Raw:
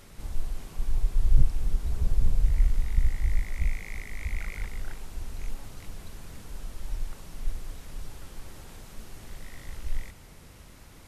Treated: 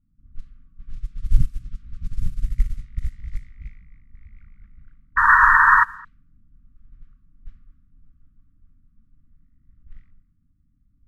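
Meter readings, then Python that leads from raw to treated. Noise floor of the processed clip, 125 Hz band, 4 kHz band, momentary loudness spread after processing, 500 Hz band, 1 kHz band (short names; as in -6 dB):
-63 dBFS, -1.0 dB, n/a, 22 LU, under -15 dB, +30.5 dB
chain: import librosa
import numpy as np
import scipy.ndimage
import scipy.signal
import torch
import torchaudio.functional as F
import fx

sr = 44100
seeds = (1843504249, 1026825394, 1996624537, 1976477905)

p1 = fx.brickwall_bandstop(x, sr, low_hz=310.0, high_hz=1100.0)
p2 = fx.dynamic_eq(p1, sr, hz=150.0, q=0.87, threshold_db=-44.0, ratio=4.0, max_db=5)
p3 = p2 + 10.0 ** (-12.0 / 20.0) * np.pad(p2, (int(1164 * sr / 1000.0), 0))[:len(p2)]
p4 = fx.spec_paint(p3, sr, seeds[0], shape='noise', start_s=5.16, length_s=0.68, low_hz=910.0, high_hz=1900.0, level_db=-14.0)
p5 = p4 + fx.echo_single(p4, sr, ms=212, db=-10.0, dry=0)
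p6 = fx.env_lowpass(p5, sr, base_hz=360.0, full_db=-14.0)
p7 = fx.upward_expand(p6, sr, threshold_db=-24.0, expansion=2.5)
y = F.gain(torch.from_numpy(p7), 5.5).numpy()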